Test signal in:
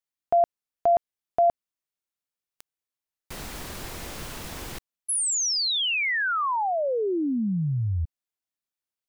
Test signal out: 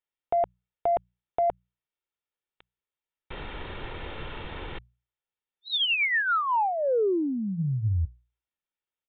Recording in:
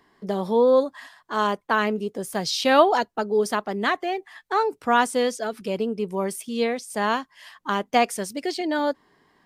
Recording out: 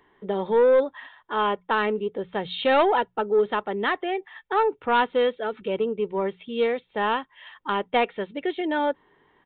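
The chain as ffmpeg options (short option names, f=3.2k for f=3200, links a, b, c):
-af "bandreject=f=60:t=h:w=6,bandreject=f=120:t=h:w=6,bandreject=f=180:t=h:w=6,aecho=1:1:2.2:0.37,aresample=8000,asoftclip=type=tanh:threshold=-12dB,aresample=44100"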